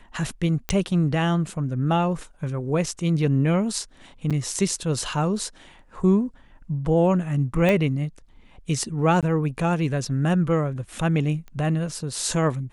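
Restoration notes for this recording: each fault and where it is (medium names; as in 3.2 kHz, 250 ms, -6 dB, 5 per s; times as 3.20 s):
0.69 s: pop -10 dBFS
4.30–4.31 s: dropout 6.6 ms
7.69 s: pop -10 dBFS
9.21–9.23 s: dropout 17 ms
11.48 s: pop -29 dBFS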